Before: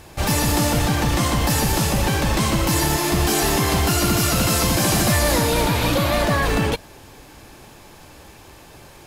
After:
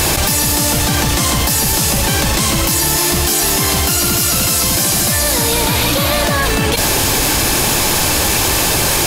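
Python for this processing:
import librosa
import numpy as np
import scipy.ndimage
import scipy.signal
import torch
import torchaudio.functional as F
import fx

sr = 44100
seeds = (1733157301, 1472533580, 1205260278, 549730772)

y = fx.high_shelf(x, sr, hz=3200.0, db=11.0)
y = fx.env_flatten(y, sr, amount_pct=100)
y = F.gain(torch.from_numpy(y), -2.0).numpy()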